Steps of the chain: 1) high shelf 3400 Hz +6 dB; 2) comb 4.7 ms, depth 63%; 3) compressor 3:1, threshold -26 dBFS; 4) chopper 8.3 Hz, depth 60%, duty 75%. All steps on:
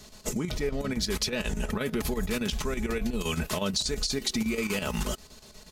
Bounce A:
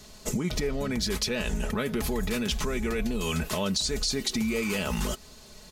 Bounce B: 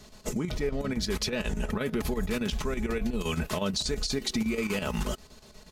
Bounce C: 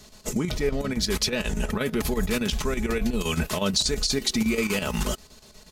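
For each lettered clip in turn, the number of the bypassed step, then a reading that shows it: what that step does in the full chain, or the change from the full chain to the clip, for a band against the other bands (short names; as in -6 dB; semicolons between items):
4, loudness change +1.0 LU; 1, 8 kHz band -3.5 dB; 3, loudness change +4.0 LU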